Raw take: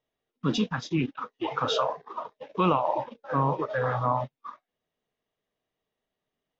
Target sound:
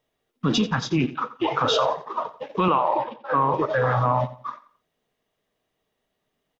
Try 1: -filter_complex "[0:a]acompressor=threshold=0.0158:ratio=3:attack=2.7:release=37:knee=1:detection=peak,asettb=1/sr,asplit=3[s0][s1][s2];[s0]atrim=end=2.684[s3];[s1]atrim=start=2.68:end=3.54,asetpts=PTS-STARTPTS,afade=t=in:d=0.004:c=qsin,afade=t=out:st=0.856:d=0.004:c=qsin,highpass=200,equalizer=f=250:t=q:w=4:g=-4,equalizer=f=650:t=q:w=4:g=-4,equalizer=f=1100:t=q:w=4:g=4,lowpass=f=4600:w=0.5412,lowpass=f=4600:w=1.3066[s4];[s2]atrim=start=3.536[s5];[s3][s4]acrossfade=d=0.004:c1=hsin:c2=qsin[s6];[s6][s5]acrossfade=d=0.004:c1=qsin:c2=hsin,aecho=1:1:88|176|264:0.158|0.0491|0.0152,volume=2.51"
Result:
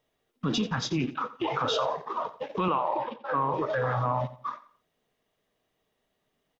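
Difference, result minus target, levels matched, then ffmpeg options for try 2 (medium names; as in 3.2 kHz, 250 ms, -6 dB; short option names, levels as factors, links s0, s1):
compression: peak gain reduction +6.5 dB
-filter_complex "[0:a]acompressor=threshold=0.0473:ratio=3:attack=2.7:release=37:knee=1:detection=peak,asettb=1/sr,asplit=3[s0][s1][s2];[s0]atrim=end=2.684[s3];[s1]atrim=start=2.68:end=3.54,asetpts=PTS-STARTPTS,afade=t=in:d=0.004:c=qsin,afade=t=out:st=0.856:d=0.004:c=qsin,highpass=200,equalizer=f=250:t=q:w=4:g=-4,equalizer=f=650:t=q:w=4:g=-4,equalizer=f=1100:t=q:w=4:g=4,lowpass=f=4600:w=0.5412,lowpass=f=4600:w=1.3066[s4];[s2]atrim=start=3.536[s5];[s3][s4]acrossfade=d=0.004:c1=hsin:c2=qsin[s6];[s6][s5]acrossfade=d=0.004:c1=qsin:c2=hsin,aecho=1:1:88|176|264:0.158|0.0491|0.0152,volume=2.51"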